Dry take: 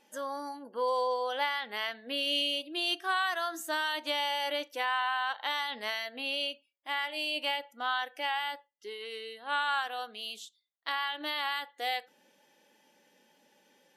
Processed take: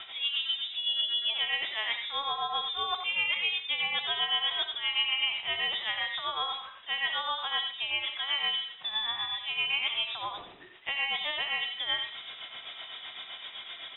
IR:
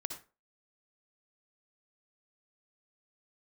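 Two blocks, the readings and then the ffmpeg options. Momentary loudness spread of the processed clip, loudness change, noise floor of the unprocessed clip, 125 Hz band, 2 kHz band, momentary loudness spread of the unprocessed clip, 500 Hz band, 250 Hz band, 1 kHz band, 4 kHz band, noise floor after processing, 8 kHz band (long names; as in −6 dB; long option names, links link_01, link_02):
13 LU, +3.0 dB, −72 dBFS, can't be measured, +1.5 dB, 11 LU, −10.5 dB, below −10 dB, −4.0 dB, +6.5 dB, −48 dBFS, below −30 dB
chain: -filter_complex "[0:a]aeval=exprs='val(0)+0.5*0.00668*sgn(val(0))':channel_layout=same,highshelf=frequency=2700:gain=-9,areverse,acompressor=threshold=-36dB:ratio=5,areverse,tremolo=f=7.8:d=0.68,asplit=2[link_01][link_02];[link_02]adelay=90,highpass=300,lowpass=3400,asoftclip=type=hard:threshold=-36.5dB,volume=-6dB[link_03];[link_01][link_03]amix=inputs=2:normalize=0,asplit=2[link_04][link_05];[1:a]atrim=start_sample=2205,lowshelf=frequency=460:gain=-5.5[link_06];[link_05][link_06]afir=irnorm=-1:irlink=0,volume=1.5dB[link_07];[link_04][link_07]amix=inputs=2:normalize=0,lowpass=frequency=3300:width_type=q:width=0.5098,lowpass=frequency=3300:width_type=q:width=0.6013,lowpass=frequency=3300:width_type=q:width=0.9,lowpass=frequency=3300:width_type=q:width=2.563,afreqshift=-3900,acontrast=73,volume=-1.5dB"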